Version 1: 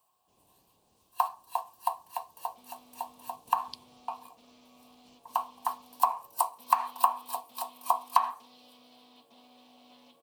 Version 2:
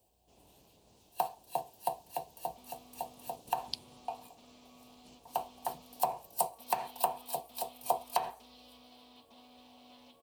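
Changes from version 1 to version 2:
speech +6.0 dB; first sound: remove resonant high-pass 1.1 kHz, resonance Q 11

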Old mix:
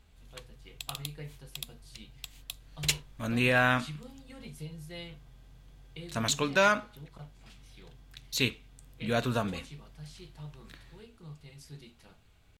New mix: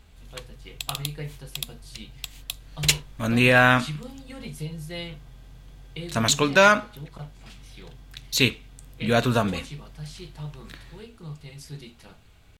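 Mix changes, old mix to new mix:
speech +8.5 dB; background +8.0 dB

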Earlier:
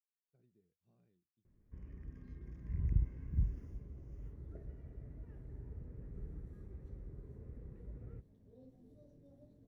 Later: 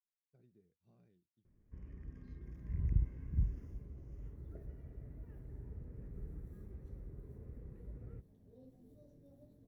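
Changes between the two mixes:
speech +5.0 dB; second sound: remove Bessel low-pass 6.9 kHz

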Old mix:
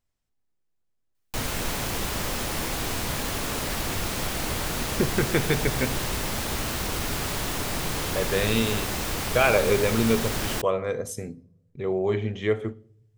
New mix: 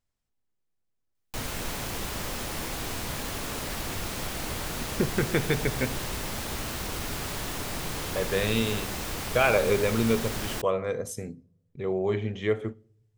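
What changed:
speech: send -6.5 dB; background -4.5 dB

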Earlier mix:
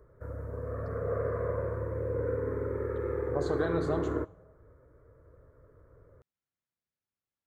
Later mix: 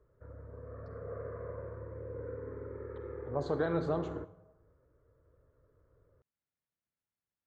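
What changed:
background -10.0 dB; master: add distance through air 120 m

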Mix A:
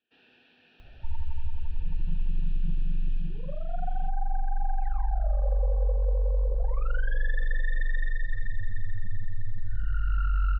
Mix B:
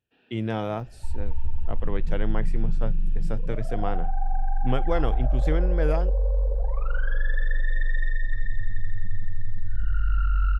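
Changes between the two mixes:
speech: unmuted; first sound: add peaking EQ 5.2 kHz -7 dB 2.5 oct; reverb: on, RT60 1.8 s

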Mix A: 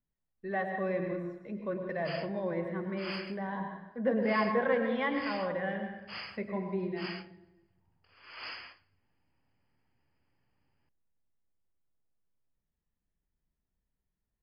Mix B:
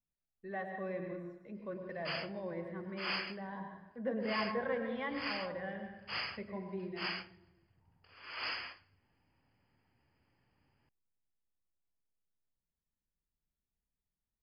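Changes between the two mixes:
speech -7.5 dB; background +3.5 dB

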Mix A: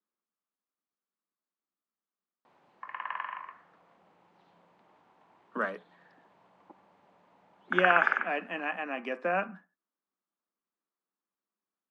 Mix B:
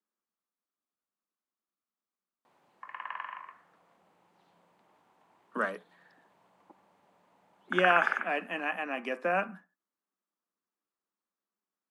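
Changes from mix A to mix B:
background -3.5 dB; master: remove distance through air 100 m

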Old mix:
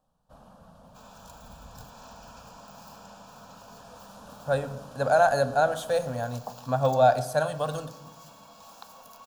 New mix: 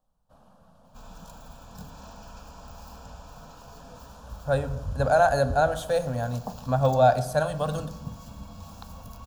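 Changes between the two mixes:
speech: add bass shelf 180 Hz +7.5 dB; first sound -5.0 dB; second sound: remove high-pass 460 Hz 12 dB/octave

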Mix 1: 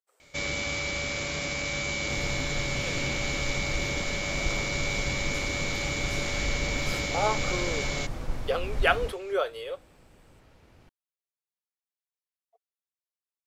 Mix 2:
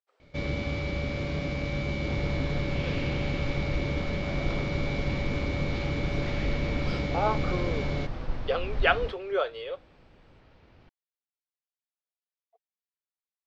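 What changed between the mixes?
first sound: add tilt shelf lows +8 dB, about 650 Hz; master: add low-pass 4.7 kHz 24 dB/octave

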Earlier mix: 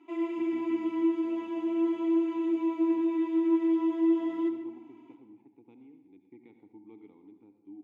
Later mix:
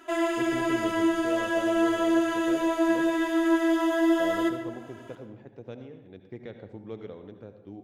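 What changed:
background -4.0 dB; master: remove vowel filter u

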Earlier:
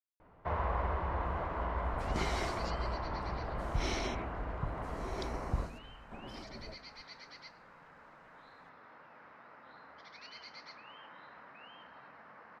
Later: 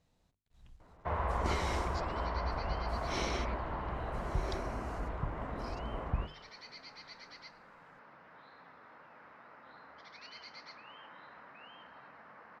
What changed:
speech: entry -0.70 s; first sound: entry +0.60 s

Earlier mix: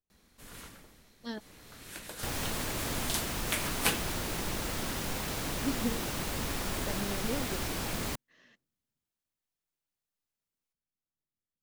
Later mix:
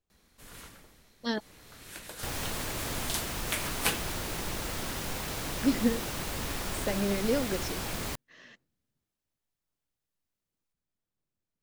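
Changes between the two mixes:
speech +9.5 dB; master: add peaking EQ 230 Hz -2.5 dB 1 oct

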